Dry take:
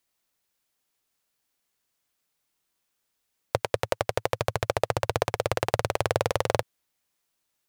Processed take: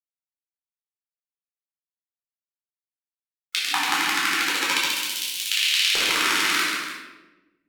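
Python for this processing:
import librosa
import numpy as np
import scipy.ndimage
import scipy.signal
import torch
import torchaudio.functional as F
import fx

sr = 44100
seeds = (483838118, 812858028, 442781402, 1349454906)

p1 = fx.highpass(x, sr, hz=110.0, slope=24, at=(3.65, 4.23))
p2 = fx.pre_emphasis(p1, sr, coefficient=0.8, at=(4.77, 5.48))
p3 = fx.spec_gate(p2, sr, threshold_db=-15, keep='weak')
p4 = fx.filter_lfo_highpass(p3, sr, shape='square', hz=0.42, low_hz=430.0, high_hz=3000.0, q=2.3)
p5 = fx.quant_dither(p4, sr, seeds[0], bits=12, dither='none')
p6 = p5 + fx.echo_multitap(p5, sr, ms=(137, 291), db=(-5.5, -12.0), dry=0)
p7 = fx.room_shoebox(p6, sr, seeds[1], volume_m3=550.0, walls='mixed', distance_m=4.1)
y = F.gain(torch.from_numpy(p7), 4.5).numpy()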